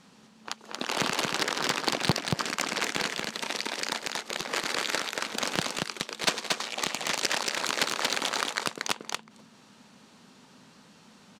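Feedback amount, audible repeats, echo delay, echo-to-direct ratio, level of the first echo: no steady repeat, 1, 0.231 s, -3.0 dB, -3.0 dB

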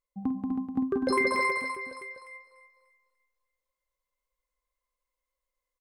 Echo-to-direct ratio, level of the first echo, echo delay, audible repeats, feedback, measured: 1.5 dB, -11.0 dB, 50 ms, 9, no steady repeat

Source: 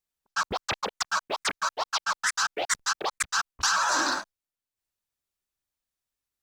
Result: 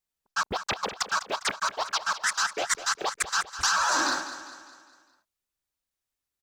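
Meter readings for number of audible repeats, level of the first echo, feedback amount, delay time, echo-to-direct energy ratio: 4, -12.5 dB, 48%, 0.202 s, -11.5 dB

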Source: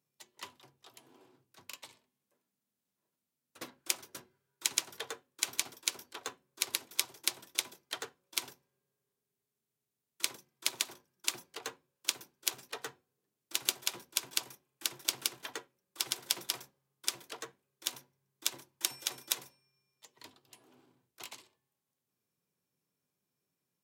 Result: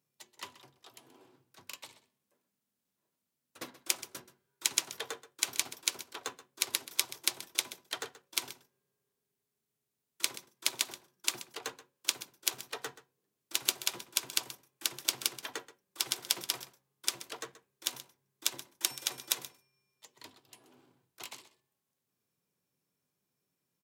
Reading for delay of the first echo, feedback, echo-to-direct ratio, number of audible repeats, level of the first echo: 0.129 s, no steady repeat, -16.0 dB, 1, -16.0 dB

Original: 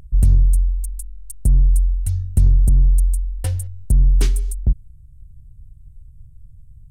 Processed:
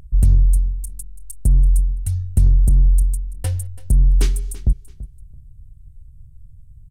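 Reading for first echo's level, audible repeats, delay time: -17.5 dB, 2, 0.334 s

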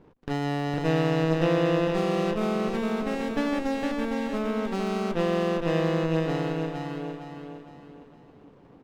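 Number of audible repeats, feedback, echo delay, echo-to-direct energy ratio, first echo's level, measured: 4, 39%, 0.46 s, -3.0 dB, -3.5 dB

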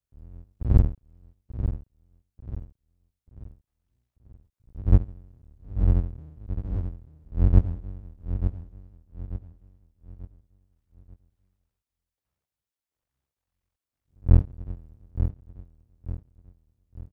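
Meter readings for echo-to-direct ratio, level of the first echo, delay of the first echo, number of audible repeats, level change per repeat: -8.5 dB, -9.0 dB, 0.888 s, 4, -8.0 dB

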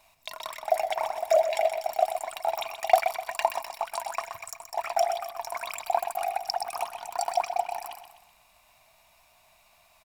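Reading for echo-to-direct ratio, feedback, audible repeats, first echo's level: -8.0 dB, 43%, 4, -9.0 dB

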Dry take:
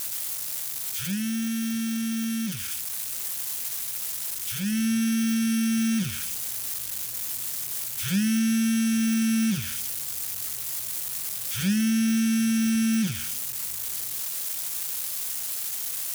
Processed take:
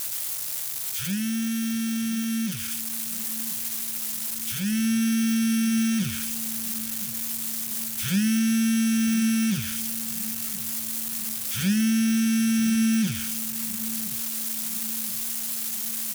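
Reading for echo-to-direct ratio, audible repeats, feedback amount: -15.5 dB, 3, 57%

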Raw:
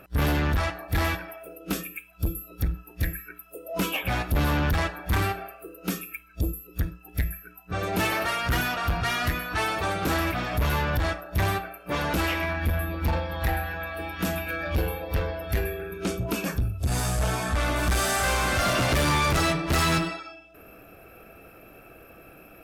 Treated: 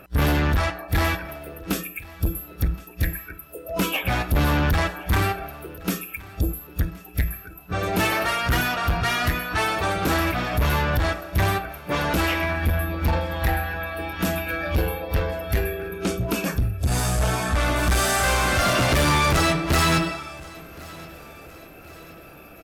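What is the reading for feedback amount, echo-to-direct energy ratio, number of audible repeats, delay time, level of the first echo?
46%, -20.5 dB, 3, 1.071 s, -21.5 dB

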